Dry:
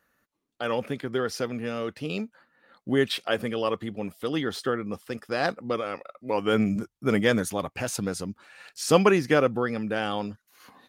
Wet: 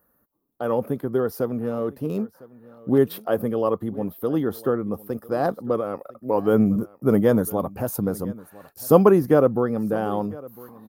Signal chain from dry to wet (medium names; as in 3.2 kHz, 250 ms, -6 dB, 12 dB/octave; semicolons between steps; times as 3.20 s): 1.58–2.98 s: self-modulated delay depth 0.11 ms; FFT filter 460 Hz 0 dB, 1.1 kHz -3 dB, 2.3 kHz -21 dB, 8 kHz -14 dB, 13 kHz +9 dB; delay 1004 ms -21 dB; trim +5.5 dB